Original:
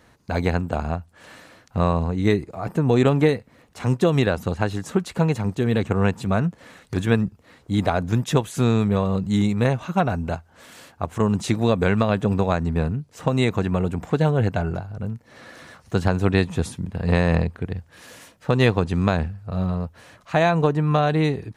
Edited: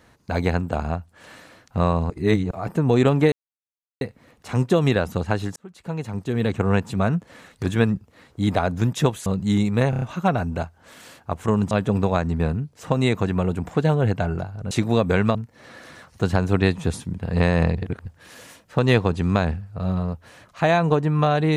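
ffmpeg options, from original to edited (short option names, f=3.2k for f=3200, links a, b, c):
-filter_complex "[0:a]asplit=15[a][b][c][d][e][f][g][h][i][j][k][l][m][n][o];[a]atrim=end=2.102[p];[b]atrim=start=2.098:end=2.512,asetpts=PTS-STARTPTS,areverse[q];[c]atrim=start=2.508:end=3.32,asetpts=PTS-STARTPTS,afade=t=out:st=0.808:d=0.004:c=hsin,apad=pad_dur=0.69[r];[d]atrim=start=3.32:end=4.87,asetpts=PTS-STARTPTS,afade=t=in:d=0.004:c=hsin,afade=t=out:st=1.546:d=0.004:c=hsin[s];[e]atrim=start=4.87:end=8.572,asetpts=PTS-STARTPTS,afade=t=in:d=1.03[t];[f]atrim=start=9.098:end=9.772[u];[g]atrim=start=9.738:end=9.772[v];[h]atrim=start=9.738:end=9.772[w];[i]atrim=start=9.738:end=9.772[x];[j]atrim=start=9.738:end=11.432[y];[k]atrim=start=12.068:end=15.072[z];[l]atrim=start=11.428:end=12.072[aa];[m]atrim=start=15.068:end=17.492[ab];[n]atrim=start=17.488:end=17.782,asetpts=PTS-STARTPTS,areverse[ac];[o]atrim=start=17.778[ad];[p][q]acrossfade=d=0.004:c1=hsin:c2=hsin[ae];[r][s][t]concat=n=3:v=0:a=1[af];[ae][af]acrossfade=d=0.004:c1=hsin:c2=hsin[ag];[ag][u]acrossfade=d=0.004:c1=hsin:c2=hsin[ah];[ah][v]acrossfade=d=0.004:c1=hsin:c2=hsin[ai];[ai][w]acrossfade=d=0.004:c1=hsin:c2=hsin[aj];[aj][x]acrossfade=d=0.004:c1=hsin:c2=hsin[ak];[ak][y]acrossfade=d=0.004:c1=hsin:c2=hsin[al];[al][z]acrossfade=d=0.004:c1=hsin:c2=hsin[am];[am][aa]acrossfade=d=0.004:c1=hsin:c2=hsin[an];[an][ab]acrossfade=d=0.004:c1=hsin:c2=hsin[ao];[ao][ac]acrossfade=d=0.004:c1=hsin:c2=hsin[ap];[ap][ad]acrossfade=d=0.004:c1=hsin:c2=hsin"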